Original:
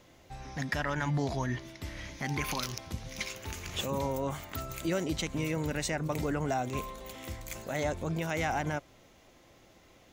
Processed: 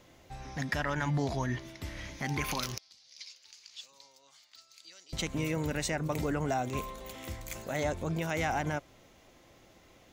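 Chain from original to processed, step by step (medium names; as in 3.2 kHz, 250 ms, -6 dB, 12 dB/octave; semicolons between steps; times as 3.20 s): 2.78–5.13 s: band-pass filter 4.7 kHz, Q 4.6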